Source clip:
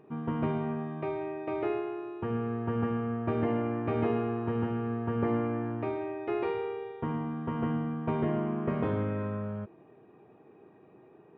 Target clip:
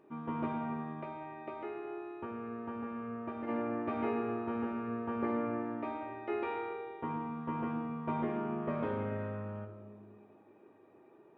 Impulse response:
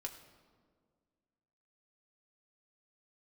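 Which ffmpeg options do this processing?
-filter_complex "[0:a]lowshelf=frequency=170:gain=-10.5,asplit=3[link_01][link_02][link_03];[link_01]afade=type=out:start_time=0.99:duration=0.02[link_04];[link_02]acompressor=threshold=-35dB:ratio=6,afade=type=in:start_time=0.99:duration=0.02,afade=type=out:start_time=3.47:duration=0.02[link_05];[link_03]afade=type=in:start_time=3.47:duration=0.02[link_06];[link_04][link_05][link_06]amix=inputs=3:normalize=0[link_07];[1:a]atrim=start_sample=2205[link_08];[link_07][link_08]afir=irnorm=-1:irlink=0"

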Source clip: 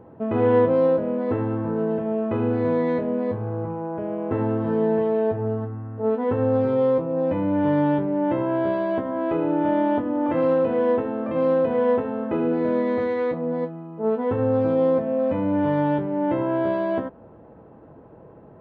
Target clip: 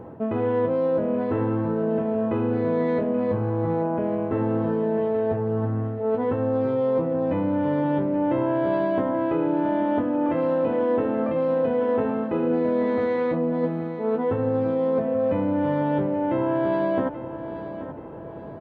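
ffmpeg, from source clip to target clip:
ffmpeg -i in.wav -af "areverse,acompressor=threshold=-28dB:ratio=6,areverse,aecho=1:1:830|1660|2490|3320:0.251|0.1|0.0402|0.0161,volume=7dB" out.wav

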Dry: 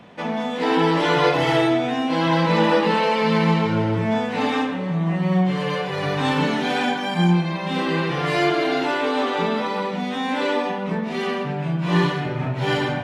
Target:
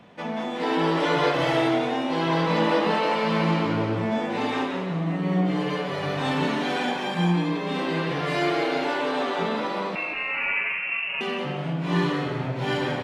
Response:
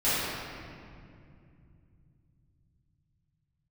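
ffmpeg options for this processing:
-filter_complex "[0:a]asettb=1/sr,asplit=3[link_01][link_02][link_03];[link_01]atrim=end=9.954[link_04];[link_02]atrim=start=9.95:end=11.21,asetpts=PTS-STARTPTS,afade=type=in:duration=0.004:curve=qsin,afade=type=out:start_time=1.256:duration=0.004:curve=qsin,lowpass=frequency=2500:width_type=q:width=0.5098,lowpass=frequency=2500:width_type=q:width=0.6013,lowpass=frequency=2500:width_type=q:width=0.9,lowpass=frequency=2500:width_type=q:width=2.563,afreqshift=-2900[link_05];[link_03]atrim=start=11.206[link_06];[link_04][link_05]acrossfade=duration=0.004:curve1=hsin:curve2=qsin[link_07];[link_07][link_06]acrossfade=duration=0.004:curve1=qsin:curve2=hsin,asplit=6[link_08][link_09][link_10][link_11][link_12][link_13];[link_09]adelay=179,afreqshift=120,volume=-7.5dB[link_14];[link_10]adelay=358,afreqshift=240,volume=-14.8dB[link_15];[link_11]adelay=537,afreqshift=360,volume=-22.2dB[link_16];[link_12]adelay=716,afreqshift=480,volume=-29.5dB[link_17];[link_13]adelay=895,afreqshift=600,volume=-36.8dB[link_18];[link_08][link_14][link_15][link_16][link_17][link_18]amix=inputs=6:normalize=0,asplit=2[link_19][link_20];[1:a]atrim=start_sample=2205[link_21];[link_20][link_21]afir=irnorm=-1:irlink=0,volume=-31.5dB[link_22];[link_19][link_22]amix=inputs=2:normalize=0,volume=-5dB"

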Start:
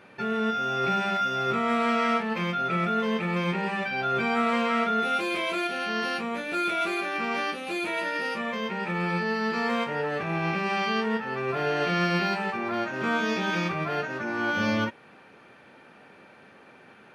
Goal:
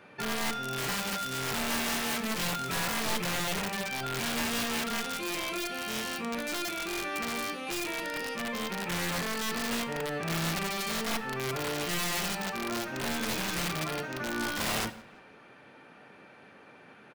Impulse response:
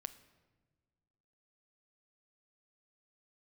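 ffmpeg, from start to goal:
-filter_complex "[0:a]asettb=1/sr,asplit=3[link_01][link_02][link_03];[link_01]atrim=end=0.784[link_04];[link_02]atrim=start=0.78:end=3.16,asetpts=PTS-STARTPTS,afade=type=in:duration=0.004:curve=qsin,afade=type=out:start_time=2.376:duration=0.004:curve=qsin,aeval=exprs='val(0)+0.5*0.0178*sgn(val(0))':channel_layout=same[link_05];[link_03]atrim=start=3.156[link_06];[link_04][link_05]acrossfade=duration=0.004:curve1=hsin:curve2=qsin[link_07];[link_07][link_06]acrossfade=duration=0.004:curve1=qsin:curve2=hsin,acrossover=split=310|3000[link_08][link_09][link_10];[link_09]acompressor=threshold=-32dB:ratio=10[link_11];[link_08][link_11][link_10]amix=inputs=3:normalize=0,aeval=exprs='(mod(16.8*val(0)+1,2)-1)/16.8':channel_layout=same,asplit=2[link_12][link_13];[link_13]adelay=170,lowpass=frequency=4500:poles=1,volume=-22dB,asplit=2[link_14][link_15];[link_15]adelay=170,lowpass=frequency=4500:poles=1,volume=0.49,asplit=2[link_16][link_17];[link_17]adelay=170,lowpass=frequency=4500:poles=1,volume=0.49[link_18];[link_12][link_14][link_16][link_18]amix=inputs=4:normalize=0[link_19];[1:a]atrim=start_sample=2205,atrim=end_sample=6615[link_20];[link_19][link_20]afir=irnorm=-1:irlink=0,volume=2dB"

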